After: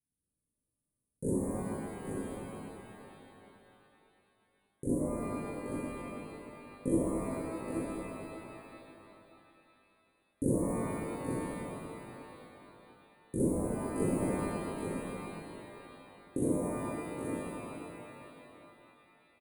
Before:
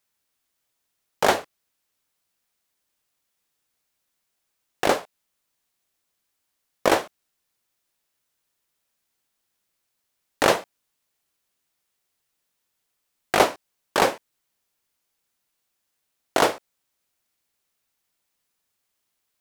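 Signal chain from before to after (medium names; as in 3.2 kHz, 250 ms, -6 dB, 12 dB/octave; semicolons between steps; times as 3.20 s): resampled via 22.05 kHz; inverse Chebyshev band-stop 640–5500 Hz, stop band 50 dB; peaking EQ 540 Hz +15 dB 0.5 oct; on a send: delay 826 ms -7 dB; on the sum: pitch-shifted reverb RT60 3.2 s, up +12 st, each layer -8 dB, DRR -7 dB; trim -2.5 dB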